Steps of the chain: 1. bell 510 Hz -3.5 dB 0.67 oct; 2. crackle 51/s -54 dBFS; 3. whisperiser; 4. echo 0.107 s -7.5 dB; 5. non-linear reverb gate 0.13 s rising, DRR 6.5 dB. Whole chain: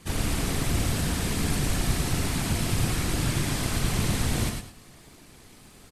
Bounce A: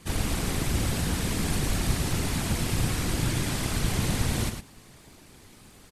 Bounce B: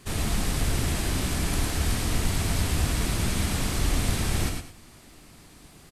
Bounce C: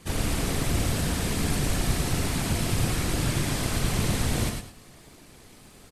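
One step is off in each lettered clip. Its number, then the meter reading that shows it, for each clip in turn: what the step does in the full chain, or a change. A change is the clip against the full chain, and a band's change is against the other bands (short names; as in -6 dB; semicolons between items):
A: 5, echo-to-direct -3.5 dB to -7.5 dB; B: 3, crest factor change -2.0 dB; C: 1, 500 Hz band +1.5 dB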